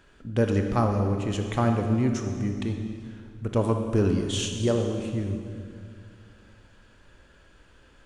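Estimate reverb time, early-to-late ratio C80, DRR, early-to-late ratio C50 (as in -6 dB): 2.3 s, 6.0 dB, 4.0 dB, 5.0 dB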